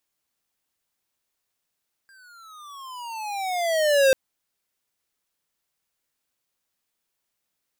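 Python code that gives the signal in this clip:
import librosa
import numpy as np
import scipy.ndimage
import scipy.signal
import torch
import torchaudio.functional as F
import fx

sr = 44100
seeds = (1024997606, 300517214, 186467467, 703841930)

y = fx.riser_tone(sr, length_s=2.04, level_db=-15.5, wave='square', hz=1610.0, rise_st=-19.5, swell_db=37)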